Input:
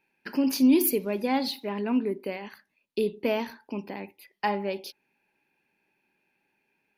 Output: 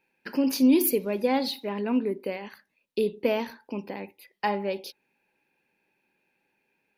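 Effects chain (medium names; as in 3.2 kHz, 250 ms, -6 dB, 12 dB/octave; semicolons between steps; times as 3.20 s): small resonant body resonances 510/3800 Hz, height 7 dB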